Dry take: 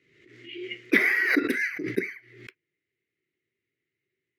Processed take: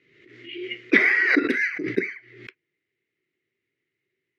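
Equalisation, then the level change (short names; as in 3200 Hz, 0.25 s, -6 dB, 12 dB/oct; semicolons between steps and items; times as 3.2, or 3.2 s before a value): LPF 4700 Hz 12 dB/oct; low shelf 120 Hz -6.5 dB; +4.0 dB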